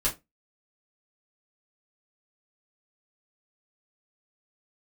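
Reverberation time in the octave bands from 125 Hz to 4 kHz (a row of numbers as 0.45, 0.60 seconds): 0.25, 0.25, 0.25, 0.20, 0.15, 0.15 seconds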